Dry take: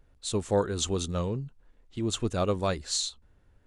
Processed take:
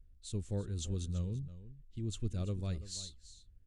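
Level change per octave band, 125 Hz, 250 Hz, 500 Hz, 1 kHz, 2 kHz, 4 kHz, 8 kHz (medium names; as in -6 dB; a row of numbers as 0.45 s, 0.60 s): -3.5 dB, -9.5 dB, -17.5 dB, -24.5 dB, under -15 dB, -14.5 dB, -13.0 dB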